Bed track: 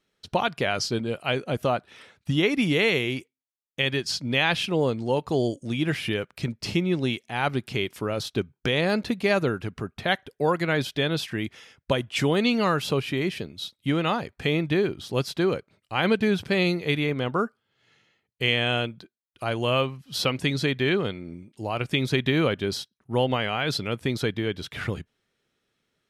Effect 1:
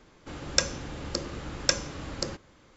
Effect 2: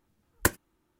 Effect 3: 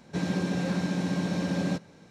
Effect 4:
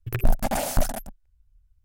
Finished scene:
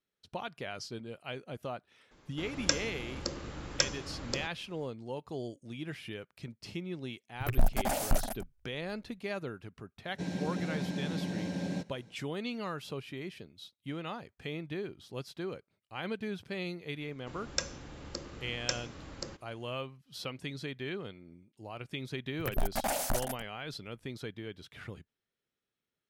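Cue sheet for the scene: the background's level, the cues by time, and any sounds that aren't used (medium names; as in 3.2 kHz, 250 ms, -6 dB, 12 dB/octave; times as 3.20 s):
bed track -15 dB
2.11 s: add 1 -4.5 dB
7.34 s: add 4 -5.5 dB
10.05 s: add 3 -7 dB + peaking EQ 1.2 kHz -14 dB 0.25 oct
17.00 s: add 1 -9 dB
22.33 s: add 4 -4 dB + bass shelf 320 Hz -9 dB
not used: 2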